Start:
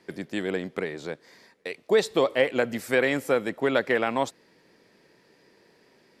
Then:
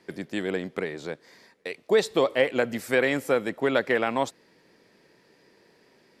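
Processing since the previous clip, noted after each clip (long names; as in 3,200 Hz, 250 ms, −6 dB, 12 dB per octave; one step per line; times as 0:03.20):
no processing that can be heard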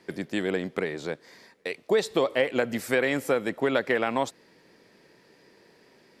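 downward compressor 2 to 1, threshold −24 dBFS, peak gain reduction 5 dB
level +2 dB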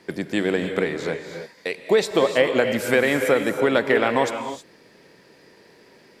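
reverb whose tail is shaped and stops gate 340 ms rising, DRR 6 dB
level +5 dB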